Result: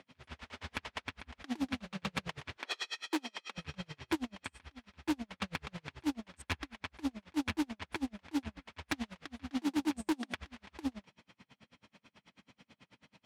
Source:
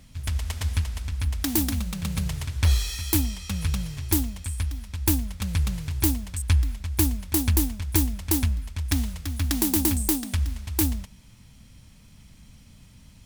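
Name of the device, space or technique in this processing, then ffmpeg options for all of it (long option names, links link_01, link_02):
helicopter radio: -filter_complex "[0:a]highpass=360,lowpass=2700,aeval=exprs='val(0)*pow(10,-36*(0.5-0.5*cos(2*PI*9.2*n/s))/20)':channel_layout=same,asoftclip=type=hard:threshold=-33.5dB,asettb=1/sr,asplit=3[link_01][link_02][link_03];[link_01]atrim=end=2.574[link_04];[link_02]atrim=start=2.57:end=3.58,asetpts=PTS-STARTPTS,afade=type=in:duration=0.004:curve=qsin,afade=type=out:start_time=1.006:duration=0.004:curve=qsin,highpass=frequency=290:width=0.5412,highpass=frequency=290:width=1.3066[link_05];[link_03]atrim=start=3.576[link_06];[link_04][link_05]acrossfade=duration=0.004:curve1=hsin:curve2=qsin[link_07];[link_07][link_06]acrossfade=duration=0.004:curve1=qsin:curve2=hsin,volume=7dB"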